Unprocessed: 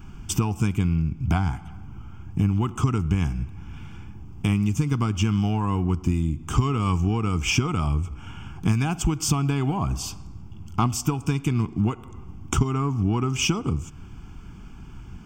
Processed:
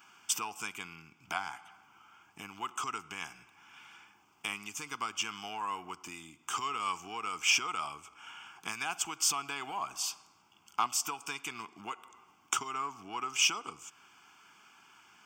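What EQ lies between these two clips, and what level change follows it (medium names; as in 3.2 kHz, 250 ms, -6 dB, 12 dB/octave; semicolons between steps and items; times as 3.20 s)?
high-pass 1 kHz 12 dB/octave; -1.5 dB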